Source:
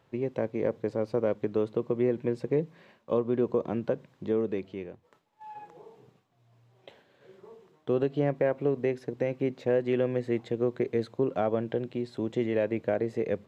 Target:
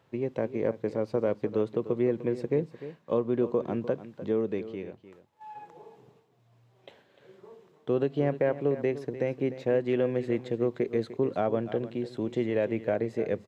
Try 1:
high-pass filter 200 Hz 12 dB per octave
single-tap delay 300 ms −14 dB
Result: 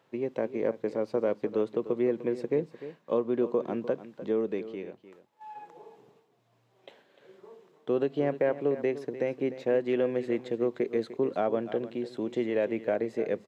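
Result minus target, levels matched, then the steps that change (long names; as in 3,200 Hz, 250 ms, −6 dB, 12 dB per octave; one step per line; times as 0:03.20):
125 Hz band −7.0 dB
change: high-pass filter 51 Hz 12 dB per octave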